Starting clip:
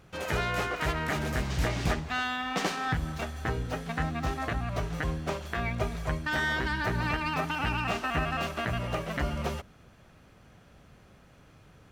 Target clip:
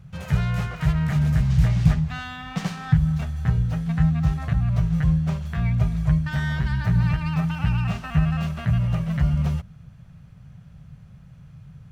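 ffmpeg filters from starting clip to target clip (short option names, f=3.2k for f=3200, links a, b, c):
-af "lowshelf=f=220:t=q:w=3:g=12.5,volume=-3.5dB"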